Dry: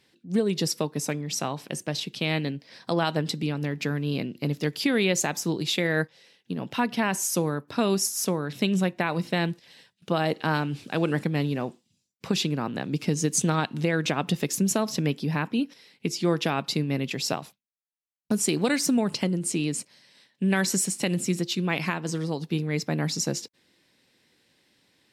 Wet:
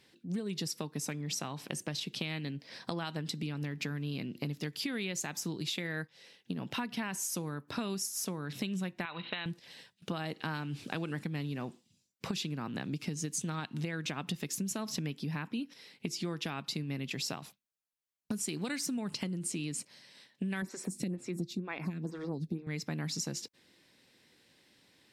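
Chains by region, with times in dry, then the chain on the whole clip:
9.05–9.46 tilt shelf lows -9 dB, about 690 Hz + compressor 2.5:1, threshold -26 dBFS + rippled Chebyshev low-pass 4000 Hz, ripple 3 dB
20.62–22.67 tilt shelf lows +6 dB, about 1100 Hz + notch 3000 Hz, Q 7.3 + photocell phaser 2.1 Hz
whole clip: dynamic EQ 550 Hz, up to -7 dB, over -39 dBFS, Q 1; compressor 5:1, threshold -34 dBFS

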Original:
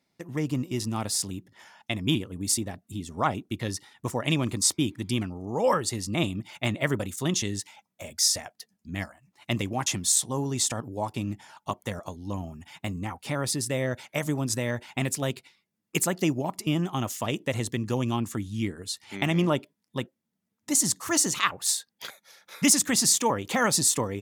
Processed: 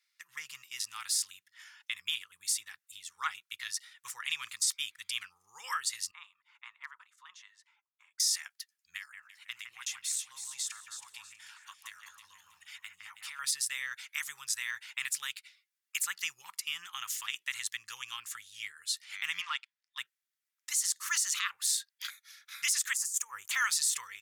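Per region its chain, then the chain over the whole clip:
6.11–8.2 band-pass 1000 Hz, Q 4 + hard clip -25.5 dBFS
8.97–13.39 compressor 2:1, threshold -39 dBFS + echo with dull and thin repeats by turns 0.161 s, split 2300 Hz, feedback 55%, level -3.5 dB
19.41–19.98 HPF 650 Hz 24 dB/oct + sample leveller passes 1 + air absorption 93 m
22.93–23.51 EQ curve 910 Hz 0 dB, 3800 Hz -20 dB, 6900 Hz +1 dB + negative-ratio compressor -28 dBFS, ratio -0.5
whole clip: inverse Chebyshev high-pass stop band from 690 Hz, stop band 40 dB; limiter -18.5 dBFS

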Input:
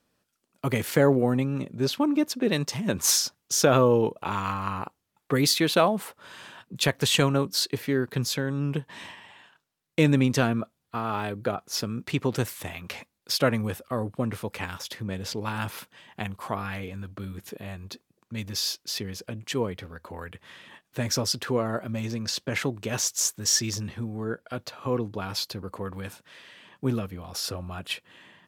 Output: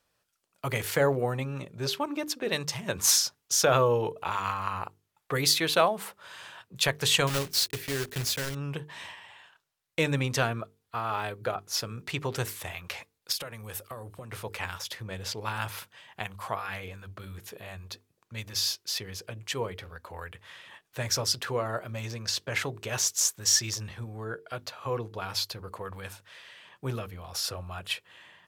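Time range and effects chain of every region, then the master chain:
7.27–8.57 block floating point 3-bit + bell 960 Hz -6.5 dB 1.3 oct
13.32–14.32 compressor 16:1, threshold -31 dBFS + high shelf 6500 Hz +9.5 dB
whole clip: bell 240 Hz -12.5 dB 1.2 oct; notches 50/100/150/200/250/300/350/400/450 Hz

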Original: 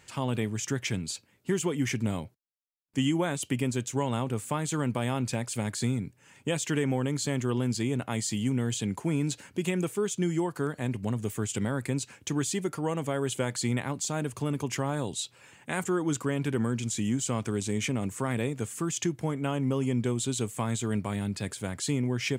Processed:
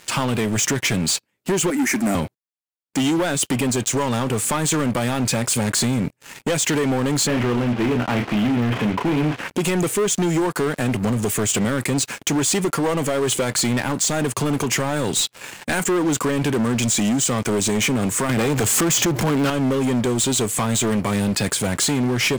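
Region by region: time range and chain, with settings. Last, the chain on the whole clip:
1.7–2.15 HPF 170 Hz 24 dB/oct + high shelf 9300 Hz +6 dB + fixed phaser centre 680 Hz, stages 8
7.27–9.49 CVSD 16 kbps + doubler 33 ms -8 dB
18.29–19.5 HPF 59 Hz 24 dB/oct + power-law curve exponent 0.5 + bell 9500 Hz -10.5 dB 0.22 oct
whole clip: HPF 210 Hz 6 dB/oct; compressor 5:1, threshold -33 dBFS; sample leveller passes 5; gain +3 dB

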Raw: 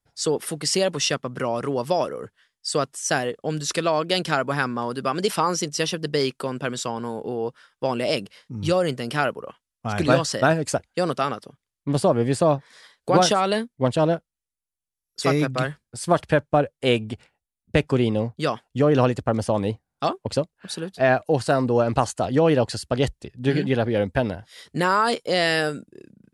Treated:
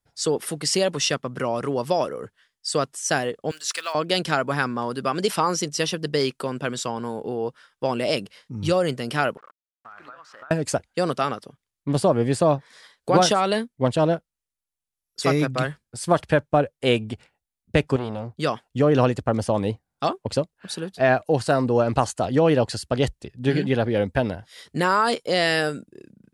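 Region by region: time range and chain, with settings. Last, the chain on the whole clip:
3.51–3.95 block floating point 7-bit + HPF 1200 Hz + notch 3700 Hz, Q 26
9.37–10.51 level-crossing sampler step -33 dBFS + band-pass 1300 Hz, Q 4.5 + compressor 10:1, threshold -39 dBFS
17.96–18.36 compressor 1.5:1, threshold -29 dBFS + core saturation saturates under 670 Hz
whole clip: dry

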